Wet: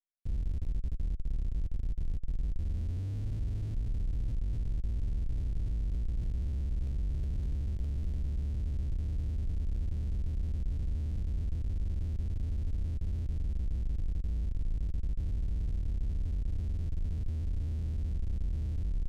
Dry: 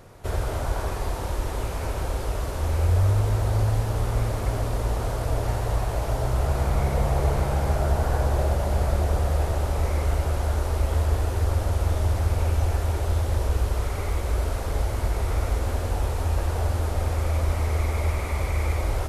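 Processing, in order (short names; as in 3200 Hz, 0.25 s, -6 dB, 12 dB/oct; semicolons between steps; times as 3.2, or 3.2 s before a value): Schmitt trigger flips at -22.5 dBFS; passive tone stack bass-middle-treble 10-0-1; slew limiter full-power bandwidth 25 Hz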